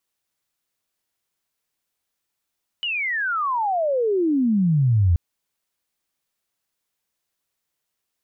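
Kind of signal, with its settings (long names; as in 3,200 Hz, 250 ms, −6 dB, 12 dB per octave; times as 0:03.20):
glide logarithmic 3,000 Hz → 81 Hz −22.5 dBFS → −13.5 dBFS 2.33 s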